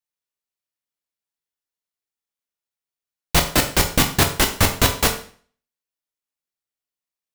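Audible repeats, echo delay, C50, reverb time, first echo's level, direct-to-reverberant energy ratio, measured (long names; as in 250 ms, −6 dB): no echo audible, no echo audible, 10.0 dB, 0.45 s, no echo audible, 4.0 dB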